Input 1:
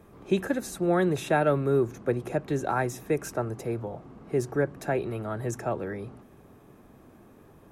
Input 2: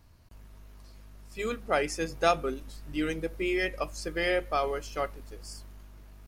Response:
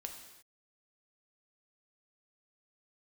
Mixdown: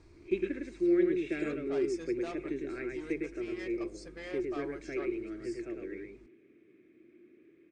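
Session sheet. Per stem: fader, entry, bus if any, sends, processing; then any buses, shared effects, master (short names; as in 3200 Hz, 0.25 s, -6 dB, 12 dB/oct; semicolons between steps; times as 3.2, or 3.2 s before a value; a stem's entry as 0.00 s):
+2.0 dB, 0.00 s, no send, echo send -3.5 dB, double band-pass 870 Hz, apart 2.7 oct
0.0 dB, 0.00 s, no send, no echo send, notch 3000 Hz, Q 6.5; soft clip -26.5 dBFS, distortion -9 dB; auto duck -11 dB, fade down 1.65 s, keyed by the first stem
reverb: off
echo: echo 0.106 s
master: elliptic low-pass 8700 Hz, stop band 40 dB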